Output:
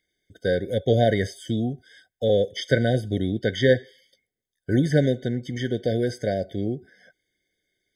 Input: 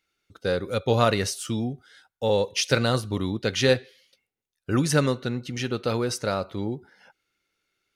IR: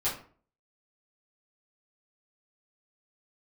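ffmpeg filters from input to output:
-filter_complex "[0:a]acrossover=split=3600[s0][s1];[s1]acompressor=threshold=0.00708:ratio=4:attack=1:release=60[s2];[s0][s2]amix=inputs=2:normalize=0,afftfilt=real='re*eq(mod(floor(b*sr/1024/750),2),0)':imag='im*eq(mod(floor(b*sr/1024/750),2),0)':win_size=1024:overlap=0.75,volume=1.33"

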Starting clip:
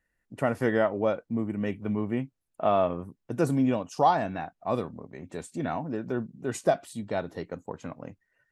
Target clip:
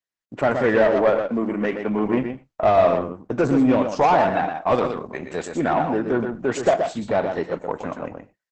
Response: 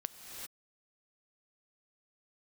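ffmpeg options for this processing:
-filter_complex "[0:a]asettb=1/sr,asplit=3[s0][s1][s2];[s0]atrim=end=1.024[s3];[s1]atrim=start=1.02:end=2.09,asetpts=PTS-STARTPTS,afade=t=in:d=0.004:c=qsin,afade=t=out:st=1.066:d=0.004:c=qsin,highpass=210[s4];[s2]atrim=start=2.086[s5];[s3][s4]acrossfade=d=0.004:c1=hsin:c2=qsin[s6];[s6][s5]acrossfade=d=0.004:c1=qsin:c2=hsin,agate=range=0.0224:threshold=0.00562:ratio=3:detection=peak,asplit=3[s7][s8][s9];[s7]afade=t=out:st=4.42:d=0.02[s10];[s8]highshelf=f=2600:g=10,afade=t=in:st=4.42:d=0.02,afade=t=out:st=5.47:d=0.02[s11];[s9]afade=t=in:st=5.47:d=0.02[s12];[s10][s11][s12]amix=inputs=3:normalize=0,asplit=2[s13][s14];[s14]highpass=f=720:p=1,volume=10,asoftclip=type=tanh:threshold=0.299[s15];[s13][s15]amix=inputs=2:normalize=0,lowpass=f=1200:p=1,volume=0.501,aecho=1:1:123:0.473[s16];[1:a]atrim=start_sample=2205,atrim=end_sample=4410[s17];[s16][s17]afir=irnorm=-1:irlink=0,aresample=32000,aresample=44100,volume=2" -ar 48000 -c:a libopus -b:a 10k

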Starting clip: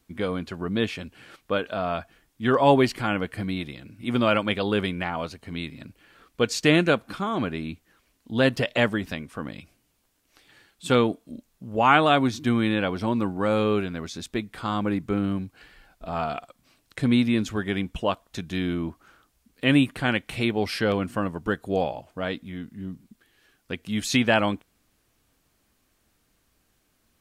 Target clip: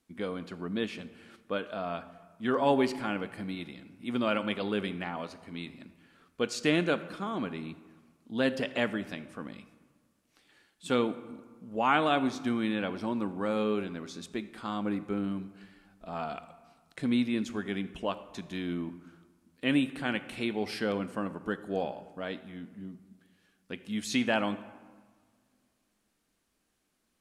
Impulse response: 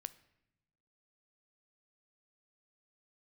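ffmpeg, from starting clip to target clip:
-filter_complex "[0:a]lowshelf=f=150:t=q:w=1.5:g=-6.5[s0];[1:a]atrim=start_sample=2205,asetrate=22491,aresample=44100[s1];[s0][s1]afir=irnorm=-1:irlink=0,volume=0.422"

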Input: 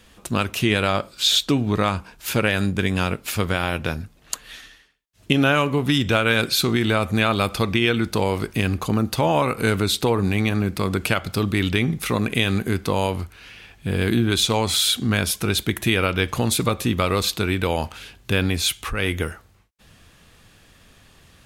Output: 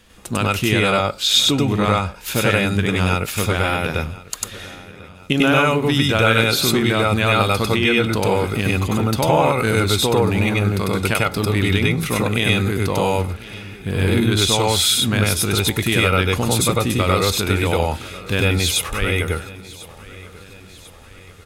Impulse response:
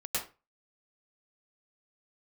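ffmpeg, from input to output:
-filter_complex "[0:a]aecho=1:1:1045|2090|3135|4180:0.106|0.0551|0.0286|0.0149[s0];[1:a]atrim=start_sample=2205,atrim=end_sample=4410[s1];[s0][s1]afir=irnorm=-1:irlink=0,volume=1.78"

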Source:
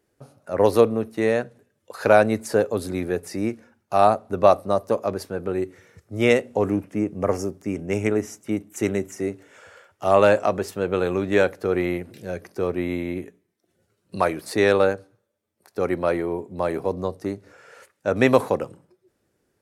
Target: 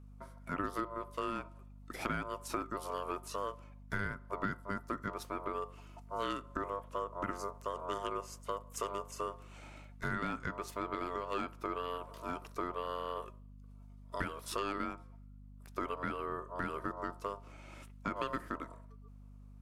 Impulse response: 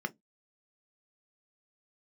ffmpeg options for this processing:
-af "aeval=exprs='val(0)*sin(2*PI*800*n/s)':c=same,acompressor=threshold=0.0316:ratio=6,aeval=exprs='val(0)+0.00398*(sin(2*PI*50*n/s)+sin(2*PI*2*50*n/s)/2+sin(2*PI*3*50*n/s)/3+sin(2*PI*4*50*n/s)/4+sin(2*PI*5*50*n/s)/5)':c=same,volume=0.631"

